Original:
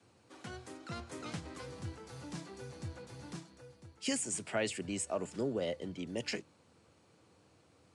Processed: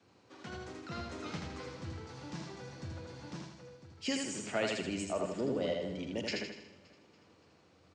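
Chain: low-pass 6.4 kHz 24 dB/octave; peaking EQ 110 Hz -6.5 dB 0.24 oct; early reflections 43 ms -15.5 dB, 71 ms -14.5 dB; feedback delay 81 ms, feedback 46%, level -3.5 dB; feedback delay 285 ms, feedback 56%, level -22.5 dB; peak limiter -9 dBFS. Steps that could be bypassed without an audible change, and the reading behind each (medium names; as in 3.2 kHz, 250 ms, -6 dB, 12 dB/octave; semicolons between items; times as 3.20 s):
peak limiter -9 dBFS: peak at its input -20.0 dBFS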